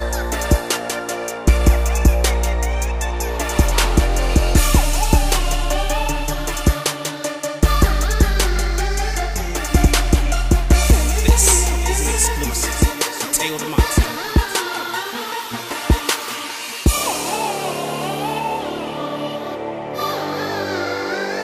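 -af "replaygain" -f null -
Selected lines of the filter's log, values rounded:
track_gain = +1.3 dB
track_peak = 0.477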